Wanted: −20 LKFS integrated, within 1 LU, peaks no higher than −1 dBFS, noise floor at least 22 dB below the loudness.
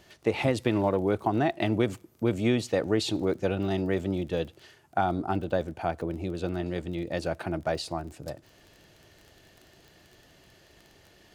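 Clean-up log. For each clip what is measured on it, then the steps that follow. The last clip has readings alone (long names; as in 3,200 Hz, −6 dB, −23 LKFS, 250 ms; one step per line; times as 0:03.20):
crackle rate 28 per second; integrated loudness −29.0 LKFS; sample peak −11.0 dBFS; target loudness −20.0 LKFS
→ click removal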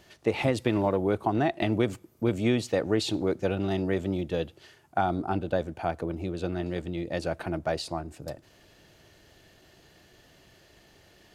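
crackle rate 0 per second; integrated loudness −29.0 LKFS; sample peak −11.0 dBFS; target loudness −20.0 LKFS
→ level +9 dB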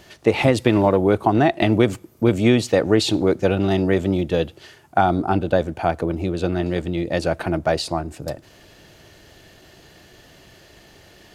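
integrated loudness −20.0 LKFS; sample peak −2.0 dBFS; background noise floor −50 dBFS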